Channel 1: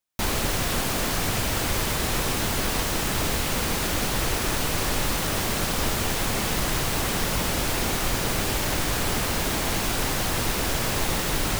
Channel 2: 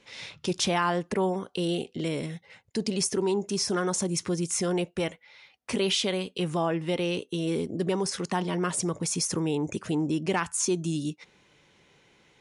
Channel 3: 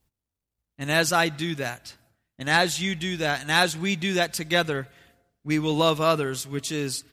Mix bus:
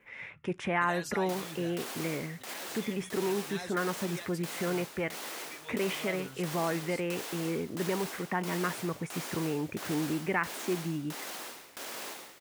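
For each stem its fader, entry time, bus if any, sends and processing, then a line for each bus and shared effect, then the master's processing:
+3.0 dB, 1.10 s, bus A, no send, Bessel high-pass 370 Hz, order 6; dB-ramp tremolo decaying 1.5 Hz, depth 38 dB
-5.0 dB, 0.00 s, no bus, no send, resonant high shelf 3000 Hz -13.5 dB, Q 3
-7.0 dB, 0.00 s, bus A, no send, endless flanger 4.2 ms +0.65 Hz; auto duck -11 dB, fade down 1.85 s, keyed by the second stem
bus A: 0.0 dB, negative-ratio compressor -35 dBFS, ratio -1; limiter -31 dBFS, peak gain reduction 11 dB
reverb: off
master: dry

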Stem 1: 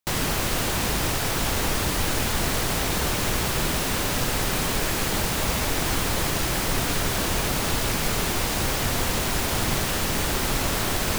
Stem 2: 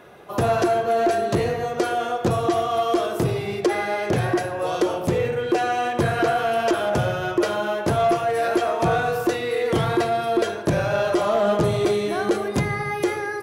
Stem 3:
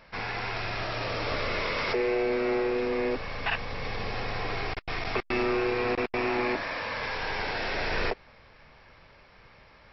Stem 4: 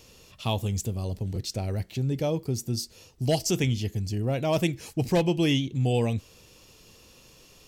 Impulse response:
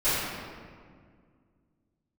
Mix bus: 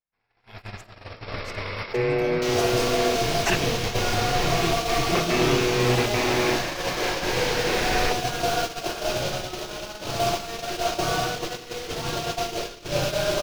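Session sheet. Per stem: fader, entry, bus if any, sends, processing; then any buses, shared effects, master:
-16.0 dB, 2.35 s, send -15 dB, band shelf 4000 Hz +14 dB
-17.5 dB, 2.15 s, send -5.5 dB, LFO low-pass saw up 5.1 Hz 590–5200 Hz; bit-crush 4-bit
+3.0 dB, 0.00 s, no send, dry
-4.0 dB, 0.00 s, send -23.5 dB, bell 690 Hz -6.5 dB 2.1 oct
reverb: on, RT60 1.9 s, pre-delay 3 ms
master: gate -24 dBFS, range -48 dB

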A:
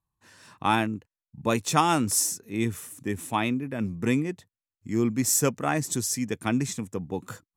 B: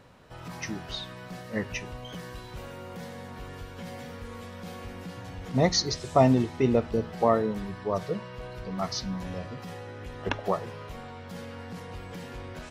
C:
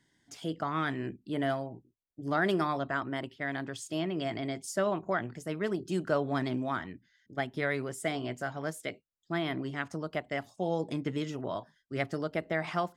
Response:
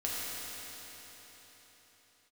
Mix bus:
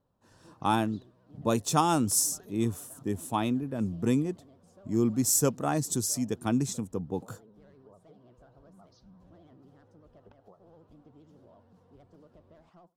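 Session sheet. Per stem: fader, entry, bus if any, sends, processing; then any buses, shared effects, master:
-1.0 dB, 0.00 s, no bus, no send, dry
-20.0 dB, 0.00 s, bus A, no send, dry
-18.5 dB, 0.00 s, bus A, no send, soft clip -27.5 dBFS, distortion -12 dB
bus A: 0.0 dB, vibrato 15 Hz 92 cents; compressor, threshold -51 dBFS, peak gain reduction 15.5 dB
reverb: off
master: bell 2100 Hz -13 dB 0.88 oct; mismatched tape noise reduction decoder only

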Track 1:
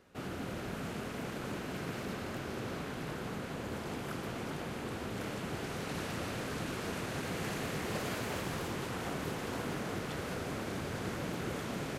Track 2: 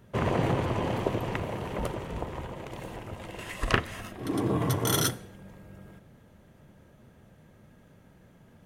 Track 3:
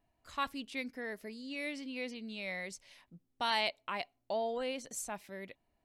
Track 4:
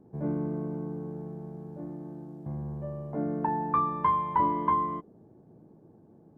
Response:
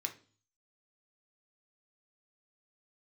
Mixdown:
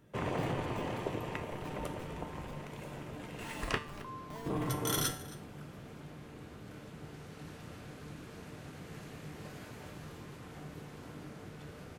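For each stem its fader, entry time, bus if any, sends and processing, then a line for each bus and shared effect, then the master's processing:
-5.0 dB, 1.50 s, no send, no echo send, low shelf 220 Hz +8 dB
0.0 dB, 0.00 s, muted 3.78–4.46, send -8 dB, echo send -17 dB, one diode to ground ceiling -8.5 dBFS
+0.5 dB, 0.00 s, no send, no echo send, Schmitt trigger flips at -31.5 dBFS
-4.0 dB, 0.00 s, no send, no echo send, compressor, threshold -38 dBFS, peak gain reduction 16 dB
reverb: on, RT60 0.40 s, pre-delay 3 ms
echo: echo 0.269 s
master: resonator 150 Hz, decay 0.45 s, harmonics all, mix 70%

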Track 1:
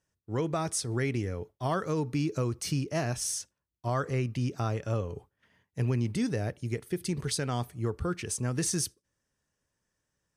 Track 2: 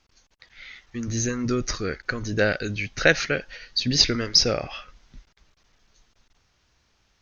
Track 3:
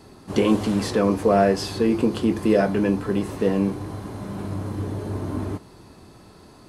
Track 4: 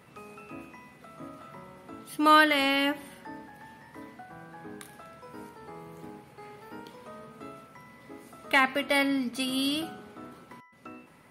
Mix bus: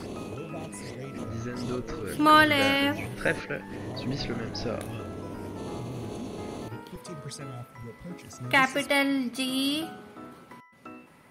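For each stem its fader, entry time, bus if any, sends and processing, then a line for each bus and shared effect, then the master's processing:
-5.5 dB, 0.00 s, bus A, no send, step phaser 2.3 Hz 210–4700 Hz
-8.5 dB, 0.20 s, no bus, no send, LPF 2600 Hz 12 dB/oct
-9.0 dB, 0.00 s, bus A, no send, per-bin compression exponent 0.6; negative-ratio compressor -29 dBFS, ratio -1
+1.0 dB, 0.00 s, no bus, no send, dry
bus A: 0.0 dB, envelope flanger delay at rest 2.6 ms, full sweep at -32.5 dBFS; limiter -29 dBFS, peak gain reduction 7.5 dB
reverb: off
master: dry

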